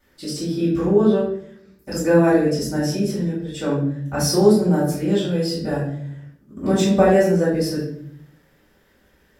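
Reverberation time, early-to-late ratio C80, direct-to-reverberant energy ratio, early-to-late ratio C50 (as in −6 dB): 0.65 s, 7.5 dB, −9.5 dB, 4.0 dB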